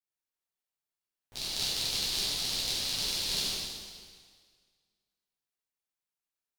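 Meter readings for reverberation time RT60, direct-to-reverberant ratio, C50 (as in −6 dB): 1.8 s, −10.5 dB, −3.0 dB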